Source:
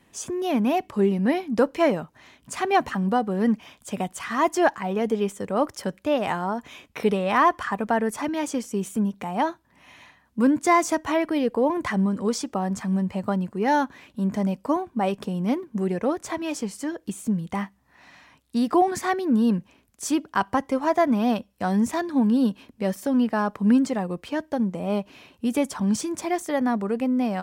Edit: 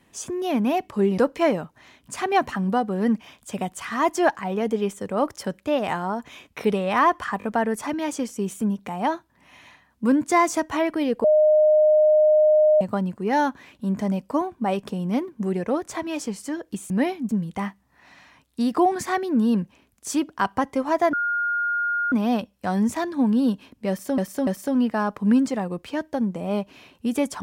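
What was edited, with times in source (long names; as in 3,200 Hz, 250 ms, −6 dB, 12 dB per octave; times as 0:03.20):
0:01.18–0:01.57: move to 0:17.25
0:07.78: stutter 0.02 s, 3 plays
0:11.59–0:13.16: beep over 613 Hz −13 dBFS
0:21.09: insert tone 1,420 Hz −21 dBFS 0.99 s
0:22.86–0:23.15: repeat, 3 plays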